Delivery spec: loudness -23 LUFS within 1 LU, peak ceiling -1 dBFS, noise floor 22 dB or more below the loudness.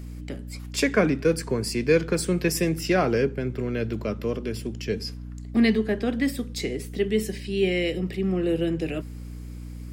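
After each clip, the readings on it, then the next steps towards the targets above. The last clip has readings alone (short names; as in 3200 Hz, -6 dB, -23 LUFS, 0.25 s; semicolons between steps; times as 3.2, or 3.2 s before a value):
hum 60 Hz; harmonics up to 300 Hz; hum level -35 dBFS; loudness -25.5 LUFS; peak -7.0 dBFS; loudness target -23.0 LUFS
-> de-hum 60 Hz, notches 5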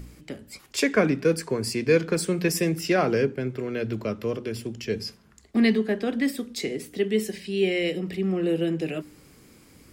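hum none; loudness -26.0 LUFS; peak -7.5 dBFS; loudness target -23.0 LUFS
-> gain +3 dB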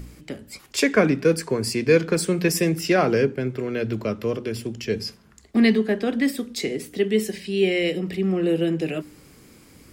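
loudness -23.0 LUFS; peak -4.5 dBFS; noise floor -51 dBFS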